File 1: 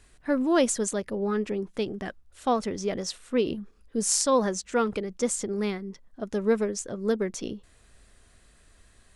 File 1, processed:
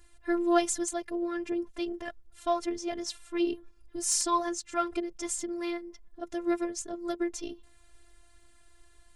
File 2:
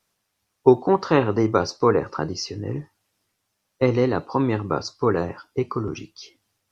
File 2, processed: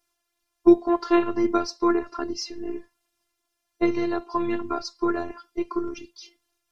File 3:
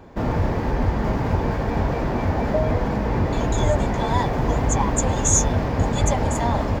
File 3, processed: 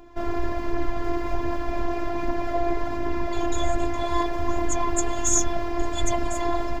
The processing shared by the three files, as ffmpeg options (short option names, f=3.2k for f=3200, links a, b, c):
-af "afftfilt=real='hypot(re,im)*cos(PI*b)':imag='0':win_size=512:overlap=0.75,aphaser=in_gain=1:out_gain=1:delay=2.9:decay=0.3:speed=1.3:type=triangular"